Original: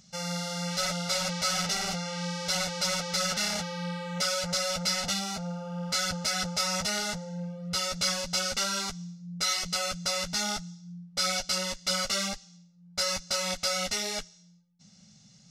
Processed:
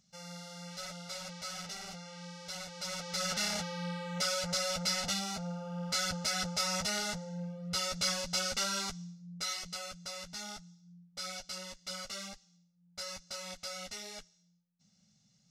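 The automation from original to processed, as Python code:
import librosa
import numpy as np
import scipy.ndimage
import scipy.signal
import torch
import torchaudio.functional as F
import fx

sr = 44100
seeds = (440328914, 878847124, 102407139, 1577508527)

y = fx.gain(x, sr, db=fx.line((2.67, -13.5), (3.37, -4.0), (8.92, -4.0), (9.97, -13.0)))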